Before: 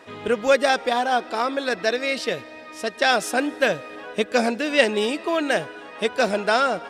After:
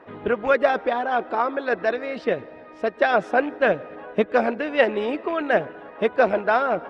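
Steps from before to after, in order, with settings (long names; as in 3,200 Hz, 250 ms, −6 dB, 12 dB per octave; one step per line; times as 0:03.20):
loose part that buzzes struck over −32 dBFS, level −25 dBFS
low-pass filter 1,500 Hz 12 dB per octave
on a send at −23 dB: convolution reverb RT60 0.75 s, pre-delay 84 ms
on the sum: harmonic and percussive parts rebalanced percussive +9 dB
level −3.5 dB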